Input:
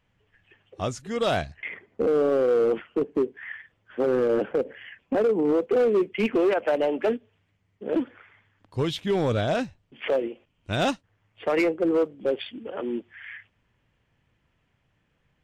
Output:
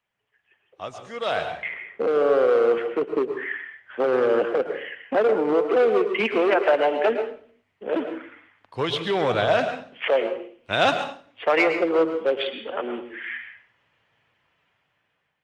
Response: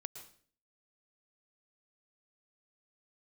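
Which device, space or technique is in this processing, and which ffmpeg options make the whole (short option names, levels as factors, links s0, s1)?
far-field microphone of a smart speaker: -filter_complex "[0:a]asplit=3[s0][s1][s2];[s0]afade=t=out:st=7.07:d=0.02[s3];[s1]highpass=f=48:p=1,afade=t=in:st=7.07:d=0.02,afade=t=out:st=7.95:d=0.02[s4];[s2]afade=t=in:st=7.95:d=0.02[s5];[s3][s4][s5]amix=inputs=3:normalize=0,acrossover=split=540 4900:gain=0.224 1 0.251[s6][s7][s8];[s6][s7][s8]amix=inputs=3:normalize=0[s9];[1:a]atrim=start_sample=2205[s10];[s9][s10]afir=irnorm=-1:irlink=0,highpass=100,dynaudnorm=f=610:g=5:m=3.98" -ar 48000 -c:a libopus -b:a 32k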